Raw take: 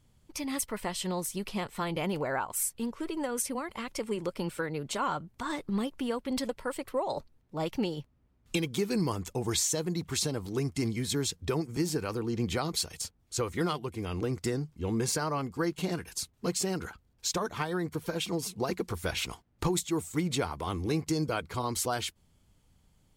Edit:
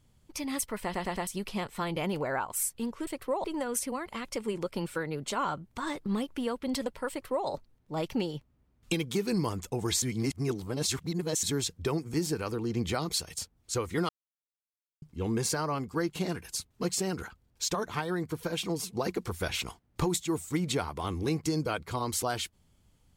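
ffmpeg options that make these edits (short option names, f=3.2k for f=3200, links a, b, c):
-filter_complex "[0:a]asplit=11[a][b][c][d][e][f][g][h][i][j][k];[a]atrim=end=0.942[l];[b]atrim=start=0.828:end=0.942[m];[c]atrim=start=0.828:end=0.942[n];[d]atrim=start=0.828:end=0.942[o];[e]atrim=start=1.268:end=3.072[p];[f]atrim=start=6.728:end=7.102[q];[g]atrim=start=3.068:end=9.652[r];[h]atrim=start=9.648:end=11.062,asetpts=PTS-STARTPTS,areverse[s];[i]atrim=start=11.058:end=13.72,asetpts=PTS-STARTPTS,afade=t=out:st=2.658:d=0.004:c=hsin[t];[j]atrim=start=13.72:end=14.65,asetpts=PTS-STARTPTS,volume=0[u];[k]atrim=start=14.65,asetpts=PTS-STARTPTS,afade=t=in:d=0.004:c=hsin[v];[l][m]acrossfade=d=0.004:c1=hsin:c2=hsin[w];[w][n]acrossfade=d=0.004:c1=hsin:c2=hsin[x];[x][o]acrossfade=d=0.004:c1=hsin:c2=hsin[y];[y][p]acrossfade=d=0.004:c1=hsin:c2=hsin[z];[z][q]acrossfade=d=0.004:c1=hsin:c2=hsin[aa];[aa][r]acrossfade=d=0.004:c1=hsin:c2=hsin[ab];[ab][s]acrossfade=d=0.004:c1=hsin:c2=hsin[ac];[t][u][v]concat=n=3:v=0:a=1[ad];[ac][ad]acrossfade=d=0.004:c1=hsin:c2=hsin"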